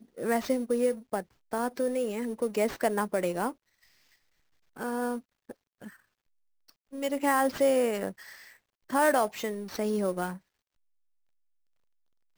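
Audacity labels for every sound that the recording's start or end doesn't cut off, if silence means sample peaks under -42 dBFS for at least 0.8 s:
4.770000	5.890000	sound
6.930000	10.370000	sound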